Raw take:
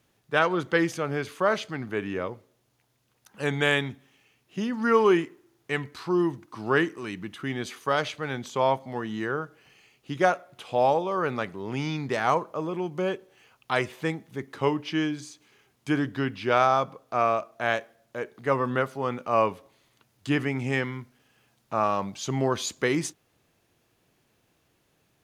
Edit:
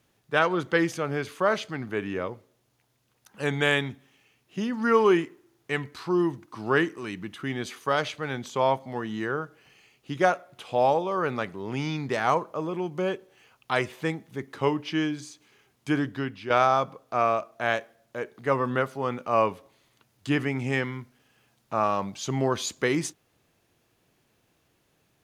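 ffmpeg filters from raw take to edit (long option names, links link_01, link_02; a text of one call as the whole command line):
ffmpeg -i in.wav -filter_complex "[0:a]asplit=2[link_01][link_02];[link_01]atrim=end=16.5,asetpts=PTS-STARTPTS,afade=type=out:start_time=15.98:duration=0.52:silence=0.421697[link_03];[link_02]atrim=start=16.5,asetpts=PTS-STARTPTS,afade=type=in:duration=0.004:curve=hsin:silence=0.421697[link_04];[link_03][link_04]concat=n=2:v=0:a=1" out.wav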